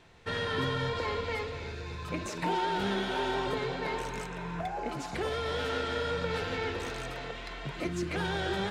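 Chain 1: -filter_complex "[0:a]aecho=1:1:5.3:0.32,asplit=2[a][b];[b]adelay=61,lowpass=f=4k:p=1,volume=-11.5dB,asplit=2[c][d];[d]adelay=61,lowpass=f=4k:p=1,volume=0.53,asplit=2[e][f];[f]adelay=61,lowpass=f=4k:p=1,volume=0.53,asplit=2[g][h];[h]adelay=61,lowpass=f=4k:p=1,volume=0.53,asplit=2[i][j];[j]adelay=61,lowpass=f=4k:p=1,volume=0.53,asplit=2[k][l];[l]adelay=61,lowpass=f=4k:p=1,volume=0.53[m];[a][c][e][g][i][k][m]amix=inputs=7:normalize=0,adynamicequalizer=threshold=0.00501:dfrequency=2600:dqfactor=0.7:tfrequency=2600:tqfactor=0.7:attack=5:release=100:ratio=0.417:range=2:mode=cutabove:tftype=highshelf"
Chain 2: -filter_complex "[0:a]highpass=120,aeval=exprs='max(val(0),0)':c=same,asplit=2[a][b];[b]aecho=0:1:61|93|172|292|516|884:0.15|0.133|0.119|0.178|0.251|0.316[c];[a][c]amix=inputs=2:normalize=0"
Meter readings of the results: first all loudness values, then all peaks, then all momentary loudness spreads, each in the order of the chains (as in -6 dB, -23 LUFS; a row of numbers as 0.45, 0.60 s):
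-33.0, -37.5 LUFS; -18.5, -18.5 dBFS; 9, 7 LU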